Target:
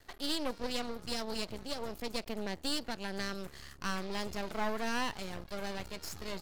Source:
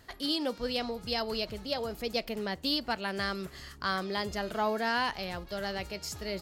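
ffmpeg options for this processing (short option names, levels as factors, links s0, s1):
-filter_complex "[0:a]asettb=1/sr,asplit=3[s0][s1][s2];[s0]atrim=end=1.064[s3];[s1]atrim=start=1.06:end=3.51,asetpts=PTS-STARTPTS,afade=t=in:d=0.004:c=qsin,afade=t=out:st=2.446:d=0.004:c=qsin,acrossover=split=310|3000[s4][s5][s6];[s5]acompressor=threshold=0.0224:ratio=6[s7];[s4][s7][s6]amix=inputs=3:normalize=0[s8];[s2]atrim=start=3.506[s9];[s3][s8]acrossfade=d=0.004:c1=hsin:c2=qsin[s10];[s10][s9]acrossfade=d=0.004:c1=qsin:c2=hsin,aeval=exprs='max(val(0),0)':c=same"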